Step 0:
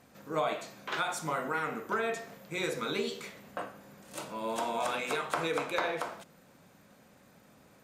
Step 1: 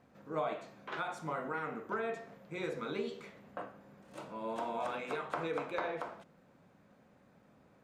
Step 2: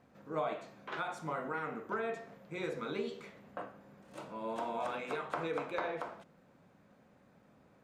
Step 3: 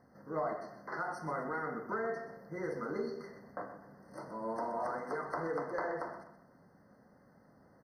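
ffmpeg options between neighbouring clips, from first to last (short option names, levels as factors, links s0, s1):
-af "lowpass=f=1500:p=1,volume=0.668"
-af anull
-af "asoftclip=type=tanh:threshold=0.0501,aecho=1:1:126|252|378|504:0.282|0.101|0.0365|0.0131,afftfilt=real='re*eq(mod(floor(b*sr/1024/2100),2),0)':imag='im*eq(mod(floor(b*sr/1024/2100),2),0)':win_size=1024:overlap=0.75,volume=1.12"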